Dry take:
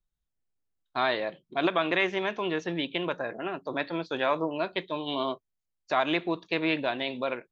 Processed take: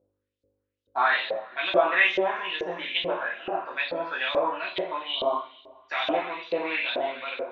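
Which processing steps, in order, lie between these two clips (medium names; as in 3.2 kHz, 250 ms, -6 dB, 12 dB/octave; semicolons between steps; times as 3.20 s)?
mains buzz 50 Hz, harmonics 11, -63 dBFS -5 dB/octave; two-slope reverb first 0.6 s, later 1.8 s, from -16 dB, DRR -6 dB; LFO band-pass saw up 2.3 Hz 470–4400 Hz; trim +3.5 dB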